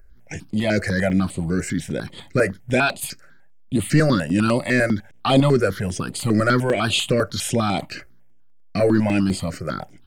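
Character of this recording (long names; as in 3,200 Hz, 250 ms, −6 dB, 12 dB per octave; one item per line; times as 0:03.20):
notches that jump at a steady rate 10 Hz 920–5,600 Hz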